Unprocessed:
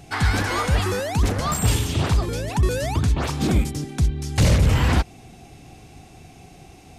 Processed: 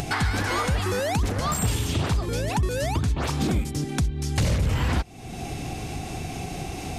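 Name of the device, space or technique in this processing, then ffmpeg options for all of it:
upward and downward compression: -af "acompressor=mode=upward:threshold=-21dB:ratio=2.5,acompressor=threshold=-23dB:ratio=3,volume=1dB"

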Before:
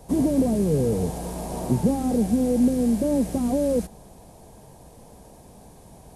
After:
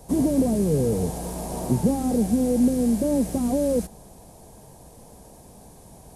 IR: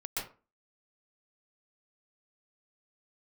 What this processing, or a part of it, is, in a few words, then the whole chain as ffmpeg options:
exciter from parts: -filter_complex "[0:a]asplit=2[a][b];[b]highpass=4.1k,asoftclip=type=tanh:threshold=-38.5dB,volume=-4.5dB[c];[a][c]amix=inputs=2:normalize=0"

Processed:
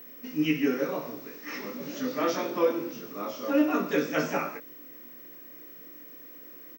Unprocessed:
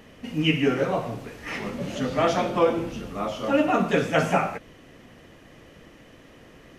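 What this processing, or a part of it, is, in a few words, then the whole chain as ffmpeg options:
old television with a line whistle: -filter_complex "[0:a]asettb=1/sr,asplit=3[a][b][c];[a]atrim=end=0.554[d];[b]atrim=start=0.55:end=1.07,asetpts=PTS-STARTPTS,afade=t=in:d=0.004:c=qsin,afade=t=out:st=0.516:d=0.004:c=qsin,lowpass=11k[e];[c]atrim=start=1.066[f];[d][e]acrossfade=d=0.004:c1=hsin:c2=qsin[g];[g][f]acrossfade=d=0.004:c1=qsin:c2=hsin,highpass=f=180:w=0.5412,highpass=f=180:w=1.3066,equalizer=f=200:t=q:w=4:g=-7,equalizer=f=290:t=q:w=4:g=5,equalizer=f=740:t=q:w=4:g=-10,equalizer=f=3k:t=q:w=4:g=-6,equalizer=f=5.5k:t=q:w=4:g=8,lowpass=f=6.8k:w=0.5412,lowpass=f=6.8k:w=1.3066,asplit=2[h][i];[i]adelay=20,volume=-4.5dB[j];[h][j]amix=inputs=2:normalize=0,aeval=exprs='val(0)+0.0112*sin(2*PI*15734*n/s)':c=same,volume=-5.5dB"

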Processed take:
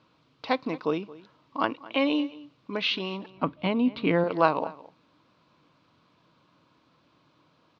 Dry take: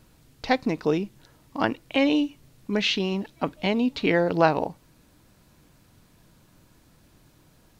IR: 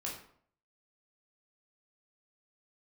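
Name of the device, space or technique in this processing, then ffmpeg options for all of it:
kitchen radio: -filter_complex "[0:a]asettb=1/sr,asplit=3[a][b][c];[a]atrim=end=3.304[d];[b]atrim=start=3.3:end=4.24,asetpts=PTS-STARTPTS,afade=t=in:d=0.004:c=qsin,afade=t=out:st=0.936:d=0.004:c=qsin,bass=f=250:g=11,treble=f=4k:g=-9[e];[c]atrim=start=4.236[f];[d][e]acrossfade=d=0.004:c1=hsin:c2=qsin[g];[g][f]acrossfade=d=0.004:c1=qsin:c2=hsin,highpass=200,equalizer=f=210:t=q:w=4:g=-6,equalizer=f=390:t=q:w=4:g=-5,equalizer=f=770:t=q:w=4:g=-4,equalizer=f=1.1k:t=q:w=4:g=8,equalizer=f=1.8k:t=q:w=4:g=-7,lowpass=f=4.3k:w=0.5412,lowpass=f=4.3k:w=1.3066,asplit=2[h][i];[i]adelay=221.6,volume=-19dB,highshelf=f=4k:g=-4.99[j];[h][j]amix=inputs=2:normalize=0,volume=-1.5dB"

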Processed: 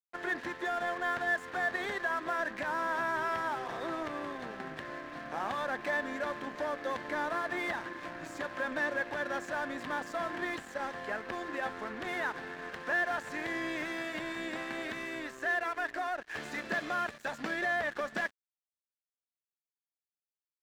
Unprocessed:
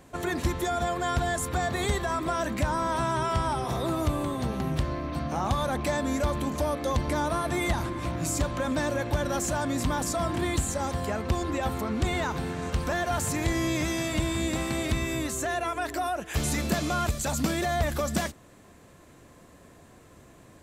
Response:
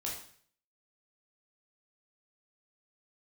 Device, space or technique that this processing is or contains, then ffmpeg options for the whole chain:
pocket radio on a weak battery: -af "highpass=330,lowpass=3.2k,aeval=exprs='sgn(val(0))*max(abs(val(0))-0.0075,0)':c=same,equalizer=f=1.7k:t=o:w=0.37:g=11,volume=-4.5dB"

